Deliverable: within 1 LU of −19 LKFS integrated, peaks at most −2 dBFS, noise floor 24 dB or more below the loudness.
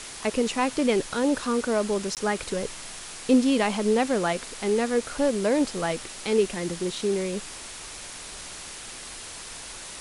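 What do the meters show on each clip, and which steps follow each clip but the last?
number of dropouts 1; longest dropout 18 ms; background noise floor −40 dBFS; target noise floor −50 dBFS; integrated loudness −25.5 LKFS; sample peak −10.0 dBFS; target loudness −19.0 LKFS
→ repair the gap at 0:02.15, 18 ms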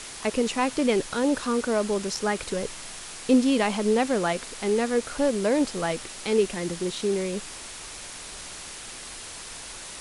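number of dropouts 0; background noise floor −40 dBFS; target noise floor −50 dBFS
→ noise reduction from a noise print 10 dB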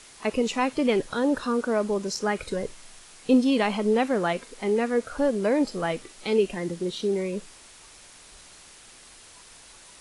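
background noise floor −50 dBFS; integrated loudness −26.0 LKFS; sample peak −10.5 dBFS; target loudness −19.0 LKFS
→ level +7 dB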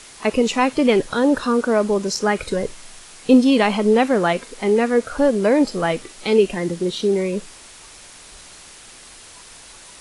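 integrated loudness −19.0 LKFS; sample peak −3.5 dBFS; background noise floor −43 dBFS

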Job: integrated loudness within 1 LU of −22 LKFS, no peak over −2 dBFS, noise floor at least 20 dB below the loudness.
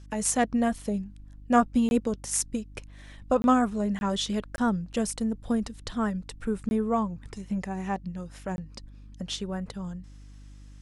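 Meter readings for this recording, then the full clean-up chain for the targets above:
number of dropouts 6; longest dropout 21 ms; mains hum 50 Hz; hum harmonics up to 300 Hz; level of the hum −45 dBFS; integrated loudness −28.5 LKFS; sample peak −6.5 dBFS; target loudness −22.0 LKFS
→ repair the gap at 0:01.89/0:03.42/0:03.99/0:04.56/0:06.69/0:08.56, 21 ms
hum removal 50 Hz, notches 6
level +6.5 dB
brickwall limiter −2 dBFS

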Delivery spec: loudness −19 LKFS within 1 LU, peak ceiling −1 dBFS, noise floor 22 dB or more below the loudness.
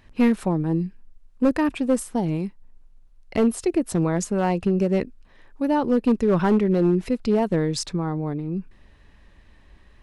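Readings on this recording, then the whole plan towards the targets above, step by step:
share of clipped samples 1.2%; peaks flattened at −13.0 dBFS; integrated loudness −23.0 LKFS; sample peak −13.0 dBFS; target loudness −19.0 LKFS
→ clipped peaks rebuilt −13 dBFS
level +4 dB

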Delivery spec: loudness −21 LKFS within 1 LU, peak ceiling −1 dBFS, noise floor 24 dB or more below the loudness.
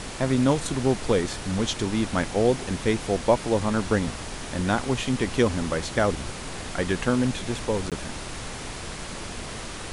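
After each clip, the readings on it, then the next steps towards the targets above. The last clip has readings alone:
number of dropouts 1; longest dropout 17 ms; background noise floor −36 dBFS; target noise floor −50 dBFS; integrated loudness −26.0 LKFS; sample peak −6.5 dBFS; target loudness −21.0 LKFS
→ repair the gap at 0:07.90, 17 ms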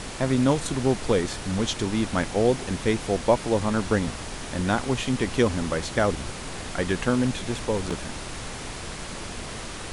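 number of dropouts 0; background noise floor −36 dBFS; target noise floor −50 dBFS
→ noise reduction from a noise print 14 dB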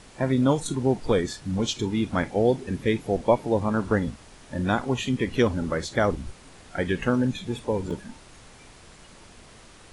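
background noise floor −50 dBFS; integrated loudness −25.5 LKFS; sample peak −7.0 dBFS; target loudness −21.0 LKFS
→ level +4.5 dB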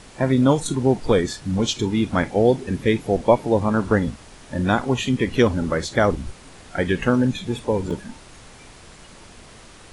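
integrated loudness −21.0 LKFS; sample peak −2.5 dBFS; background noise floor −45 dBFS

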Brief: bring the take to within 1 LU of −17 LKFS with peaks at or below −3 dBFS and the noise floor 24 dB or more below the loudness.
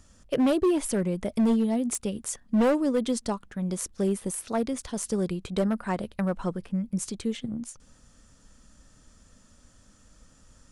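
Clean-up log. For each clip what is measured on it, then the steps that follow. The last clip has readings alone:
share of clipped samples 1.5%; peaks flattened at −18.5 dBFS; integrated loudness −28.0 LKFS; sample peak −18.5 dBFS; target loudness −17.0 LKFS
→ clipped peaks rebuilt −18.5 dBFS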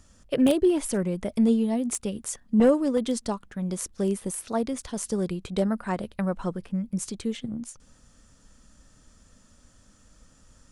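share of clipped samples 0.0%; integrated loudness −27.0 LKFS; sample peak −9.5 dBFS; target loudness −17.0 LKFS
→ level +10 dB
brickwall limiter −3 dBFS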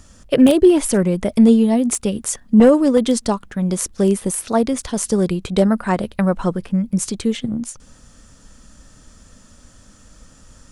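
integrated loudness −17.0 LKFS; sample peak −3.0 dBFS; background noise floor −49 dBFS

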